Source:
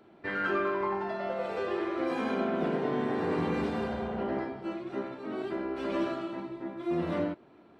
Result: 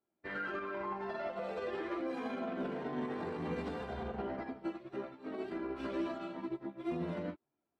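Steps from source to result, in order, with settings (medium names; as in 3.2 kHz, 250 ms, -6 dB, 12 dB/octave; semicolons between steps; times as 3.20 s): chorus voices 4, 0.58 Hz, delay 14 ms, depth 2.5 ms; peak limiter -31.5 dBFS, peak gain reduction 11.5 dB; upward expansion 2.5:1, over -57 dBFS; trim +4 dB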